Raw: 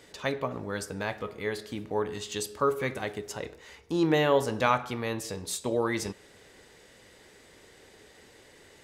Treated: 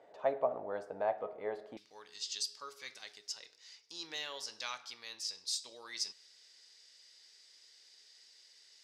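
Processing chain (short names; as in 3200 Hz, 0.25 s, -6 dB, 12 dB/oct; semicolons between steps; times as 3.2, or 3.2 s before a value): band-pass 680 Hz, Q 4.5, from 1.77 s 5000 Hz; gain +6.5 dB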